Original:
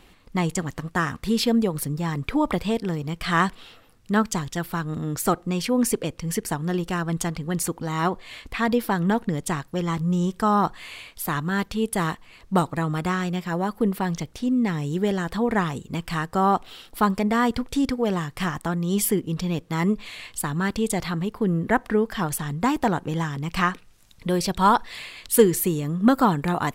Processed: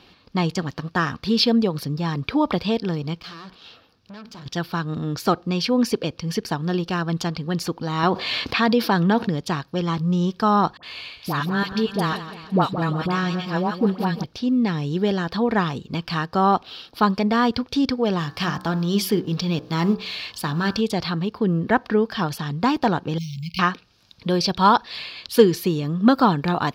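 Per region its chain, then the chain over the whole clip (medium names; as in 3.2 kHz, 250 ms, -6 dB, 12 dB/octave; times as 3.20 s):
3.20–4.46 s: hum notches 60/120/180/240 Hz + compression 10:1, threshold -27 dBFS + valve stage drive 39 dB, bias 0.55
8.03–9.28 s: high-pass 99 Hz + level flattener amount 50%
10.77–14.24 s: phase dispersion highs, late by 62 ms, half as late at 1 kHz + feedback delay 170 ms, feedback 49%, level -12.5 dB
18.19–20.81 s: companding laws mixed up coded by mu + treble shelf 5.8 kHz +4 dB + de-hum 62.19 Hz, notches 28
23.18–23.59 s: compression 1.5:1, threshold -32 dBFS + careless resampling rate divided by 6×, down none, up hold + brick-wall FIR band-stop 220–2100 Hz
whole clip: high-pass 78 Hz; resonant high shelf 6.3 kHz -10 dB, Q 3; band-stop 2 kHz, Q 7.3; trim +2 dB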